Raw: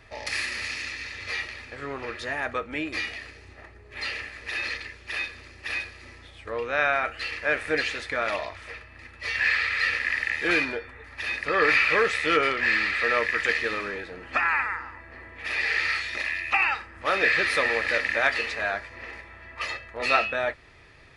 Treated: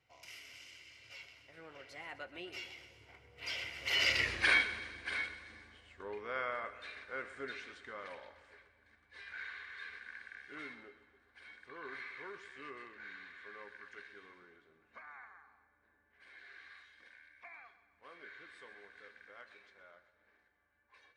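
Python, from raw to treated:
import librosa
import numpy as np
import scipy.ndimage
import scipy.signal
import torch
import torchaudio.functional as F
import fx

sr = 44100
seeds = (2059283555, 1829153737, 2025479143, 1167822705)

p1 = fx.doppler_pass(x, sr, speed_mps=47, closest_m=5.6, pass_at_s=4.3)
p2 = scipy.signal.sosfilt(scipy.signal.butter(2, 79.0, 'highpass', fs=sr, output='sos'), p1)
p3 = p2 + fx.echo_feedback(p2, sr, ms=127, feedback_pct=58, wet_db=-15, dry=0)
y = p3 * librosa.db_to_amplitude(9.0)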